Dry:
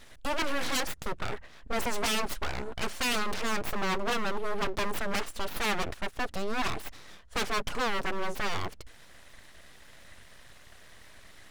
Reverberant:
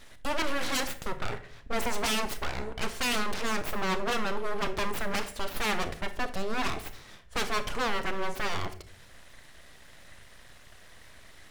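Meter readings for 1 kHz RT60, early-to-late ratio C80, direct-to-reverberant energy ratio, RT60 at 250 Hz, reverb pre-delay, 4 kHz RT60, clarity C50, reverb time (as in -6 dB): 0.45 s, 17.0 dB, 10.0 dB, 0.80 s, 27 ms, 0.35 s, 13.0 dB, 0.55 s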